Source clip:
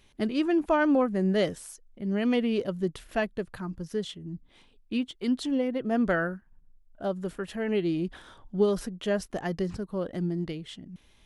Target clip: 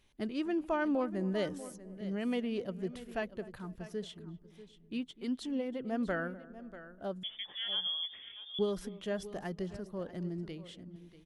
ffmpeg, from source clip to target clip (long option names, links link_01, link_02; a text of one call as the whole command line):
ffmpeg -i in.wav -filter_complex "[0:a]asplit=2[link_01][link_02];[link_02]adelay=250,lowpass=frequency=980:poles=1,volume=-17dB,asplit=2[link_03][link_04];[link_04]adelay=250,lowpass=frequency=980:poles=1,volume=0.5,asplit=2[link_05][link_06];[link_06]adelay=250,lowpass=frequency=980:poles=1,volume=0.5,asplit=2[link_07][link_08];[link_08]adelay=250,lowpass=frequency=980:poles=1,volume=0.5[link_09];[link_03][link_05][link_07][link_09]amix=inputs=4:normalize=0[link_10];[link_01][link_10]amix=inputs=2:normalize=0,asettb=1/sr,asplit=3[link_11][link_12][link_13];[link_11]atrim=end=7.234[link_14];[link_12]atrim=start=7.23:end=8.59,asetpts=PTS-STARTPTS,afade=type=in:duration=0.004:curve=qsin,afade=type=out:start_time=1.356:duration=0.004:curve=qsin,lowpass=frequency=3100:width_type=q:width=0.5098,lowpass=frequency=3100:width_type=q:width=0.6013,lowpass=frequency=3100:width_type=q:width=0.9,lowpass=frequency=3100:width_type=q:width=2.563,afreqshift=-3600[link_15];[link_13]atrim=start=8.586[link_16];[link_14][link_15]acrossfade=duration=0.004:curve1=hsin:curve2=qsin[link_17];[link_17][link_16]acrossfade=duration=0.004:curve1=qsin:curve2=hsin,asplit=2[link_18][link_19];[link_19]aecho=0:1:640:0.178[link_20];[link_18][link_20]amix=inputs=2:normalize=0,volume=-8.5dB" out.wav